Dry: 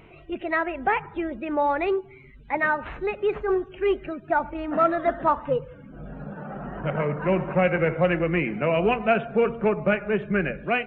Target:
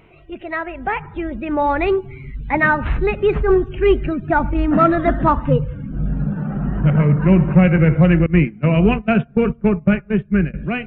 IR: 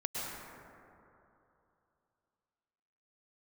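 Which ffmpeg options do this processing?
-filter_complex "[0:a]asettb=1/sr,asplit=3[link_01][link_02][link_03];[link_01]atrim=end=8.264[link_04];[link_02]atrim=start=8.26:end=10.54,asetpts=PTS-STARTPTS,afade=type=in:duration=0.004:curve=qsin,afade=type=out:start_time=2.276:duration=0.004:curve=qsin,agate=range=-21dB:threshold=-24dB:ratio=16:detection=peak[link_05];[link_03]atrim=start=10.536[link_06];[link_04][link_05]acrossfade=duration=0.004:curve1=hsin:curve2=qsin[link_07];[link_07][link_06]acrossfade=duration=0.004:curve1=qsin:curve2=hsin,asubboost=boost=6.5:cutoff=220,dynaudnorm=framelen=270:gausssize=11:maxgain=10dB"

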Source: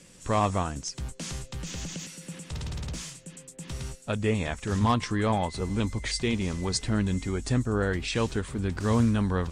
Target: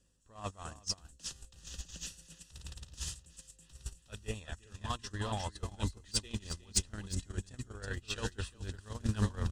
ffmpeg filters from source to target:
ffmpeg -i in.wav -filter_complex "[0:a]aeval=exprs='val(0)+0.00224*(sin(2*PI*50*n/s)+sin(2*PI*2*50*n/s)/2+sin(2*PI*3*50*n/s)/3+sin(2*PI*4*50*n/s)/4+sin(2*PI*5*50*n/s)/5)':channel_layout=same,acrossover=split=1800[link_01][link_02];[link_01]equalizer=frequency=66:width_type=o:width=0.56:gain=7[link_03];[link_02]dynaudnorm=framelen=190:gausssize=5:maxgain=9.5dB[link_04];[link_03][link_04]amix=inputs=2:normalize=0,asuperstop=centerf=2200:order=4:qfactor=4,asoftclip=type=tanh:threshold=-13.5dB,areverse,acompressor=threshold=-34dB:ratio=6,areverse,bandreject=frequency=60:width_type=h:width=6,bandreject=frequency=120:width_type=h:width=6,bandreject=frequency=180:width_type=h:width=6,bandreject=frequency=240:width_type=h:width=6,aecho=1:1:362:0.531,agate=range=-31dB:threshold=-32dB:ratio=16:detection=peak,asubboost=boost=2.5:cutoff=100,volume=9.5dB" out.wav

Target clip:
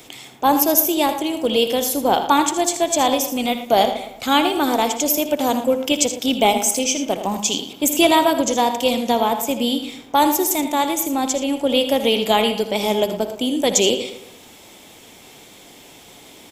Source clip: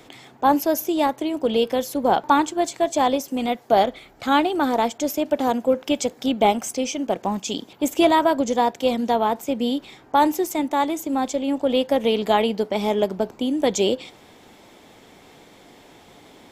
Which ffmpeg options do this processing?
ffmpeg -i in.wav -filter_complex "[0:a]asplit=2[link_01][link_02];[link_02]aecho=0:1:60|80:0.168|0.266[link_03];[link_01][link_03]amix=inputs=2:normalize=0,aexciter=amount=3.2:drive=1.2:freq=2400,asplit=2[link_04][link_05];[link_05]adelay=114,lowpass=frequency=2600:poles=1,volume=-11dB,asplit=2[link_06][link_07];[link_07]adelay=114,lowpass=frequency=2600:poles=1,volume=0.42,asplit=2[link_08][link_09];[link_09]adelay=114,lowpass=frequency=2600:poles=1,volume=0.42,asplit=2[link_10][link_11];[link_11]adelay=114,lowpass=frequency=2600:poles=1,volume=0.42[link_12];[link_06][link_08][link_10][link_12]amix=inputs=4:normalize=0[link_13];[link_04][link_13]amix=inputs=2:normalize=0,volume=1dB" out.wav

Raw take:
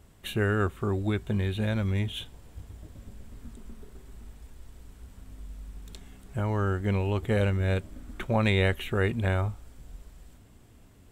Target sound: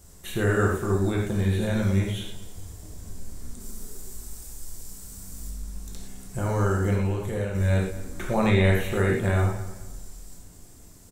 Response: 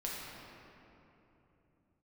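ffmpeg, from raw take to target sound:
-filter_complex "[0:a]asettb=1/sr,asplit=3[link_01][link_02][link_03];[link_01]atrim=end=3.604[link_04];[link_02]atrim=start=3.6:end=5.51,asetpts=PTS-STARTPTS,afade=type=in:duration=0.004:curve=qsin,afade=type=out:start_time=1.906:duration=0.004:curve=qsin,aemphasis=mode=production:type=cd[link_05];[link_03]atrim=start=5.506[link_06];[link_04][link_05]acrossfade=duration=0.004:curve1=hsin:curve2=qsin[link_07];[link_07][link_06]acrossfade=duration=0.004:curve1=qsin:curve2=hsin,acrossover=split=3200[link_08][link_09];[link_09]acompressor=threshold=-50dB:ratio=4:attack=1:release=60[link_10];[link_08][link_10]amix=inputs=2:normalize=0,highshelf=frequency=4300:width_type=q:width=1.5:gain=11,asettb=1/sr,asplit=3[link_11][link_12][link_13];[link_11]atrim=end=6.944[link_14];[link_12]atrim=start=6.94:end=7.55,asetpts=PTS-STARTPTS,afade=type=in:duration=0.004:curve=qsin,afade=type=out:start_time=0.606:duration=0.004:curve=qsin,acompressor=threshold=-30dB:ratio=6[link_15];[link_13]atrim=start=7.546[link_16];[link_14][link_15]acrossfade=duration=0.004:curve1=hsin:curve2=qsin[link_17];[link_17][link_16]acrossfade=duration=0.004:curve1=qsin:curve2=hsin,asplit=2[link_18][link_19];[link_19]adelay=216,lowpass=frequency=3700:poles=1,volume=-14.5dB,asplit=2[link_20][link_21];[link_21]adelay=216,lowpass=frequency=3700:poles=1,volume=0.33,asplit=2[link_22][link_23];[link_23]adelay=216,lowpass=frequency=3700:poles=1,volume=0.33[link_24];[link_18][link_20][link_22][link_24]amix=inputs=4:normalize=0[link_25];[1:a]atrim=start_sample=2205,afade=type=out:start_time=0.18:duration=0.01,atrim=end_sample=8379[link_26];[link_25][link_26]afir=irnorm=-1:irlink=0,volume=4dB"

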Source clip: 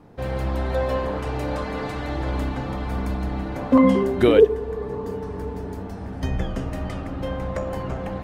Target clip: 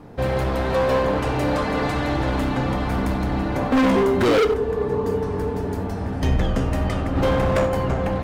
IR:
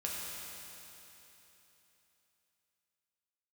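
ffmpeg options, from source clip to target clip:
-filter_complex "[0:a]asplit=3[link_01][link_02][link_03];[link_01]afade=type=out:start_time=7.15:duration=0.02[link_04];[link_02]acontrast=33,afade=type=in:start_time=7.15:duration=0.02,afade=type=out:start_time=7.65:duration=0.02[link_05];[link_03]afade=type=in:start_time=7.65:duration=0.02[link_06];[link_04][link_05][link_06]amix=inputs=3:normalize=0,volume=22dB,asoftclip=hard,volume=-22dB,asplit=2[link_07][link_08];[1:a]atrim=start_sample=2205,atrim=end_sample=4410[link_09];[link_08][link_09]afir=irnorm=-1:irlink=0,volume=-6dB[link_10];[link_07][link_10]amix=inputs=2:normalize=0,volume=4dB"

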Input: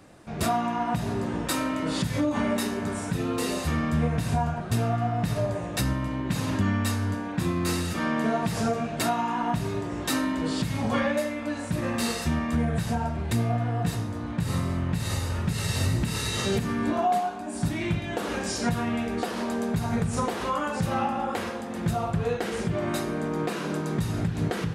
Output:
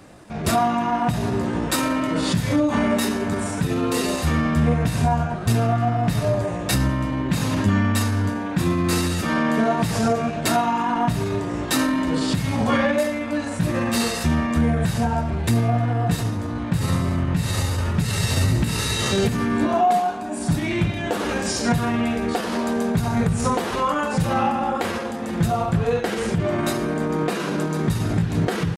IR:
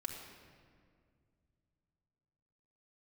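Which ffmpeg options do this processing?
-af "acontrast=48,atempo=0.86"

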